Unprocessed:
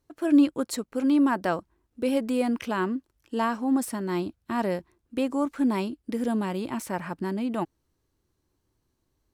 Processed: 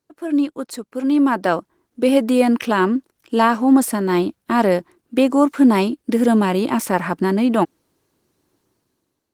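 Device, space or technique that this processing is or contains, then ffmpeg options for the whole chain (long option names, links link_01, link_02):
video call: -af "highpass=170,dynaudnorm=framelen=860:gausssize=3:maxgain=16dB" -ar 48000 -c:a libopus -b:a 20k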